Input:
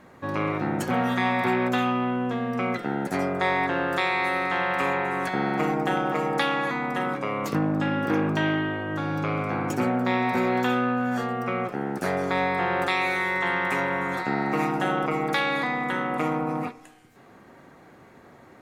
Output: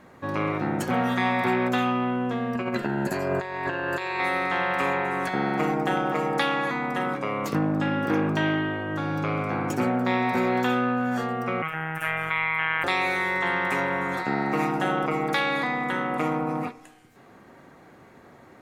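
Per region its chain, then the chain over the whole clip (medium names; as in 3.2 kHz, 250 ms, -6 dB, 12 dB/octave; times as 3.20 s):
2.55–4.20 s: rippled EQ curve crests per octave 1.4, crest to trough 10 dB + compressor with a negative ratio -27 dBFS, ratio -0.5
11.62–12.84 s: FFT filter 140 Hz 0 dB, 210 Hz -24 dB, 1.4 kHz +4 dB, 3 kHz +10 dB, 4.4 kHz -18 dB, 12 kHz +1 dB + robot voice 159 Hz + level flattener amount 50%
whole clip: none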